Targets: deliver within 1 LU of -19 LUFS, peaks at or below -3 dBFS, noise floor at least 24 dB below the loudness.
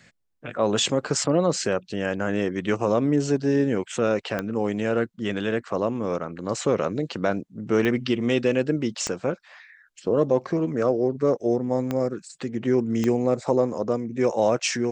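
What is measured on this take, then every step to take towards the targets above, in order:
clicks found 5; loudness -24.5 LUFS; peak level -9.0 dBFS; loudness target -19.0 LUFS
-> de-click; trim +5.5 dB

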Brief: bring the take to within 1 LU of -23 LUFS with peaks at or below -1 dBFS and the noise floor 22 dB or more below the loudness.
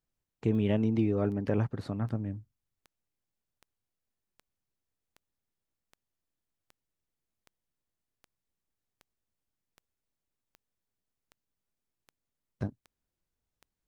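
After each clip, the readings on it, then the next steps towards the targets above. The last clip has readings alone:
clicks found 18; loudness -31.0 LUFS; peak level -14.5 dBFS; loudness target -23.0 LUFS
-> de-click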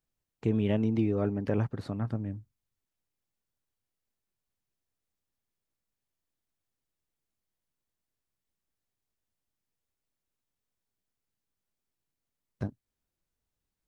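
clicks found 0; loudness -31.0 LUFS; peak level -14.5 dBFS; loudness target -23.0 LUFS
-> trim +8 dB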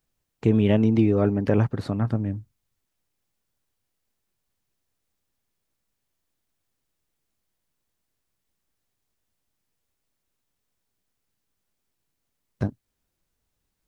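loudness -23.0 LUFS; peak level -6.5 dBFS; noise floor -80 dBFS

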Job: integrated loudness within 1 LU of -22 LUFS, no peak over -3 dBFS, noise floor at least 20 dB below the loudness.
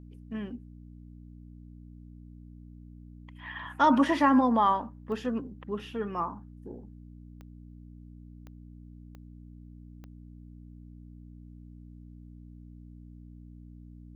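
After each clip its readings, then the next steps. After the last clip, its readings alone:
clicks found 5; hum 60 Hz; highest harmonic 300 Hz; hum level -46 dBFS; loudness -28.0 LUFS; peak level -12.0 dBFS; loudness target -22.0 LUFS
-> de-click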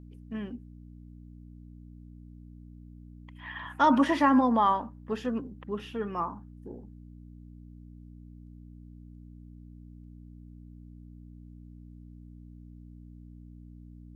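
clicks found 0; hum 60 Hz; highest harmonic 300 Hz; hum level -46 dBFS
-> de-hum 60 Hz, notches 5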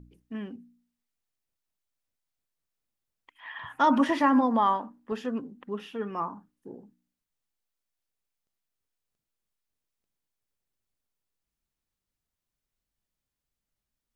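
hum not found; loudness -27.0 LUFS; peak level -11.5 dBFS; loudness target -22.0 LUFS
-> trim +5 dB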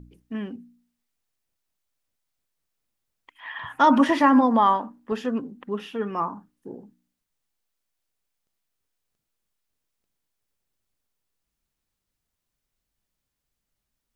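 loudness -22.0 LUFS; peak level -6.5 dBFS; noise floor -83 dBFS

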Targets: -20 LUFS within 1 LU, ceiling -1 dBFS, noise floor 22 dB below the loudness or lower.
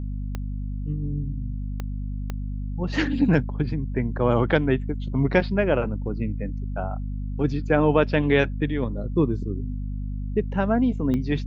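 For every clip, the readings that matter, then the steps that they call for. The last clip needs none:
clicks found 4; hum 50 Hz; highest harmonic 250 Hz; hum level -27 dBFS; loudness -25.0 LUFS; peak level -5.0 dBFS; loudness target -20.0 LUFS
-> de-click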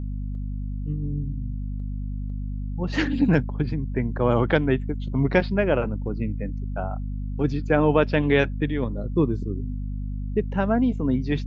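clicks found 0; hum 50 Hz; highest harmonic 250 Hz; hum level -27 dBFS
-> hum notches 50/100/150/200/250 Hz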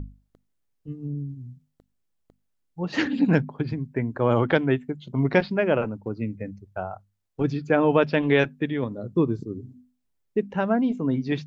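hum not found; loudness -25.0 LUFS; peak level -4.5 dBFS; loudness target -20.0 LUFS
-> trim +5 dB; peak limiter -1 dBFS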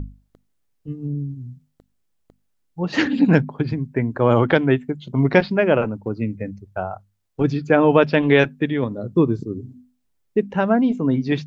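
loudness -20.0 LUFS; peak level -1.0 dBFS; noise floor -69 dBFS

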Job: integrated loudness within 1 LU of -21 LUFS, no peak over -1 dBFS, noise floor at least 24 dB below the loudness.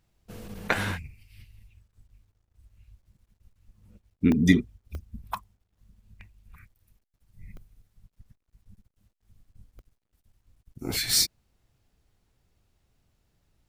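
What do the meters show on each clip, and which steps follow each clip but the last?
dropouts 7; longest dropout 1.1 ms; loudness -26.0 LUFS; peak level -4.0 dBFS; loudness target -21.0 LUFS
-> interpolate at 0.59/4.32/4.95/6.21/7.57/9.79/11.10 s, 1.1 ms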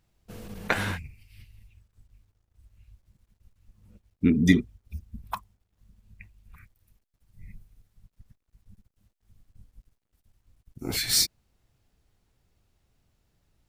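dropouts 0; loudness -26.0 LUFS; peak level -4.0 dBFS; loudness target -21.0 LUFS
-> trim +5 dB; peak limiter -1 dBFS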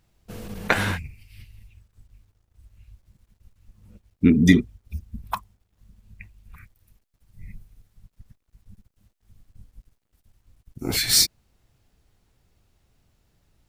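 loudness -21.5 LUFS; peak level -1.0 dBFS; noise floor -73 dBFS

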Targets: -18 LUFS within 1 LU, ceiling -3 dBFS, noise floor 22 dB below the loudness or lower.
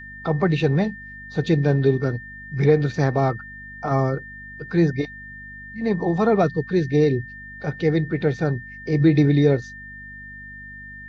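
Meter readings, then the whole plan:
hum 50 Hz; highest harmonic 250 Hz; hum level -43 dBFS; steady tone 1.8 kHz; tone level -37 dBFS; loudness -21.5 LUFS; peak level -5.0 dBFS; loudness target -18.0 LUFS
-> de-hum 50 Hz, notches 5; band-stop 1.8 kHz, Q 30; trim +3.5 dB; peak limiter -3 dBFS

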